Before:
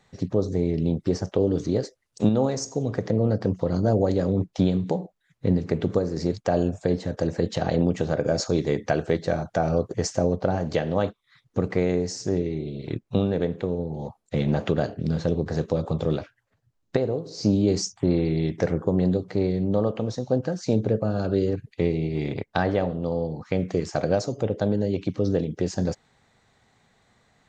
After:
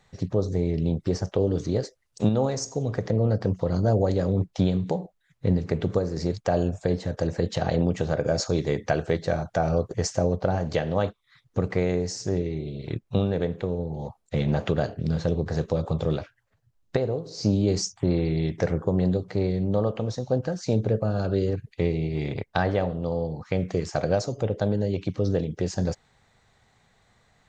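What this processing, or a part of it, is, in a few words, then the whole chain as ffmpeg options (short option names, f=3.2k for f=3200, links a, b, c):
low shelf boost with a cut just above: -af "lowshelf=f=70:g=7,equalizer=f=270:t=o:w=1.1:g=-4.5"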